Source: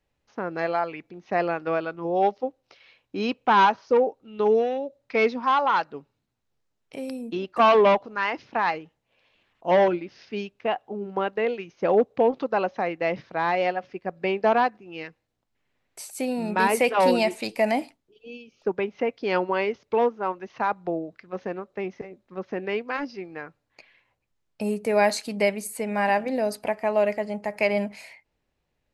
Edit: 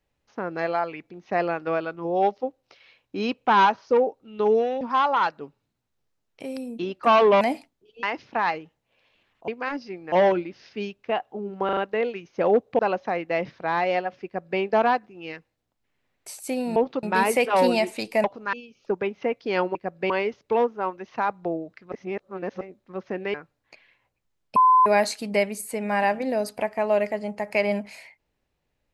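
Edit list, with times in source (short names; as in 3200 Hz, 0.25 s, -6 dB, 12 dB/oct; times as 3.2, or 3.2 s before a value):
4.81–5.34 cut
7.94–8.23 swap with 17.68–18.3
11.21 stutter 0.04 s, 4 plays
12.23–12.5 move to 16.47
13.96–14.31 copy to 19.52
21.34–22.03 reverse
22.76–23.4 move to 9.68
24.62–24.92 bleep 1020 Hz -12.5 dBFS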